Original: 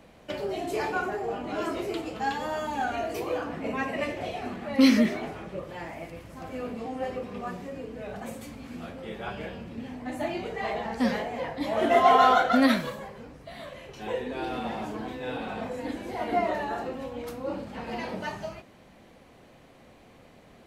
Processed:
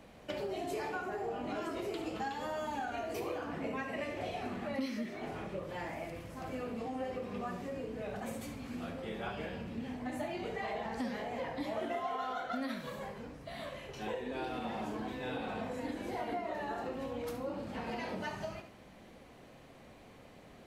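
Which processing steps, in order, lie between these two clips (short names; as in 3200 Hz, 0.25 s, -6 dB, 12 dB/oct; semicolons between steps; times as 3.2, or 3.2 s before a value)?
de-hum 167.8 Hz, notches 27; compressor 8:1, threshold -33 dBFS, peak gain reduction 18.5 dB; flutter echo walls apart 11.9 m, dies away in 0.37 s; gain -2 dB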